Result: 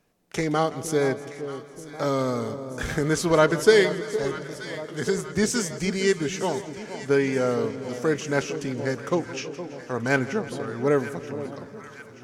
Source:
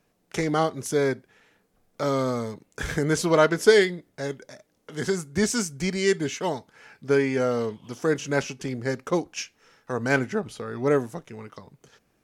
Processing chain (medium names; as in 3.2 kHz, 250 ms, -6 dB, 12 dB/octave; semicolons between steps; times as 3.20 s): 9.14–9.94 s: low-pass that closes with the level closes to 2.1 kHz, closed at -23 dBFS; echo whose repeats swap between lows and highs 465 ms, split 1 kHz, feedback 73%, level -11 dB; modulated delay 166 ms, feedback 71%, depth 71 cents, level -17 dB